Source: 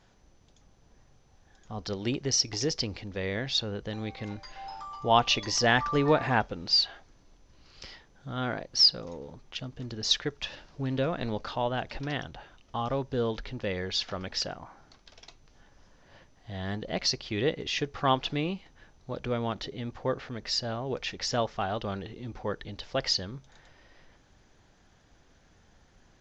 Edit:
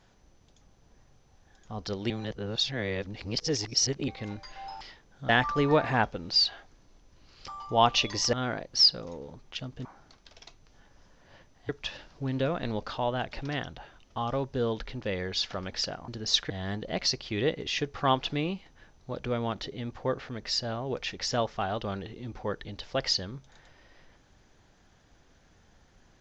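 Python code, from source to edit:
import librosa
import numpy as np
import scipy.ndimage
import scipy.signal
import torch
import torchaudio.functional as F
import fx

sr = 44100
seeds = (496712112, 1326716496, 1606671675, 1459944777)

y = fx.edit(x, sr, fx.reverse_span(start_s=2.1, length_s=1.98),
    fx.swap(start_s=4.81, length_s=0.85, other_s=7.85, other_length_s=0.48),
    fx.swap(start_s=9.85, length_s=0.42, other_s=14.66, other_length_s=1.84), tone=tone)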